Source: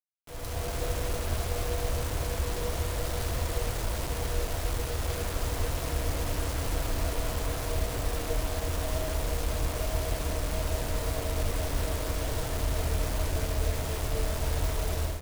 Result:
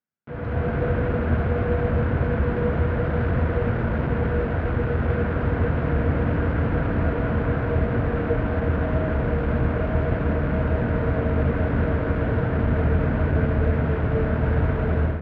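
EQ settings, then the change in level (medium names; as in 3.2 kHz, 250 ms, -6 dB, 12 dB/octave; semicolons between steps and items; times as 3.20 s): cabinet simulation 100–2300 Hz, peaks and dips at 150 Hz +5 dB, 230 Hz +9 dB, 460 Hz +4 dB, 1.5 kHz +9 dB; bass shelf 280 Hz +11.5 dB; +4.0 dB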